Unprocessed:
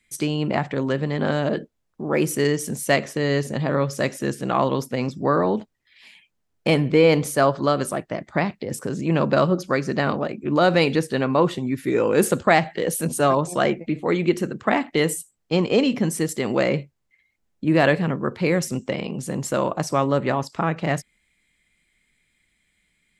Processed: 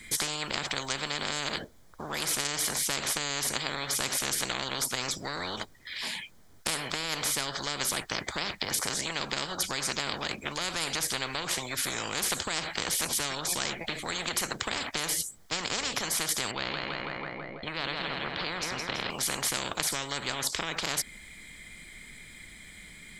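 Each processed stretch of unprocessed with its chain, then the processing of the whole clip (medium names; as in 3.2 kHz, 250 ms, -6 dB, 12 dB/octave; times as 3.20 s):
16.51–19.10 s: distance through air 320 m + feedback delay 164 ms, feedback 51%, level -9.5 dB
whole clip: band-stop 2.7 kHz, Q 5.3; compression, threshold -21 dBFS; spectrum-flattening compressor 10:1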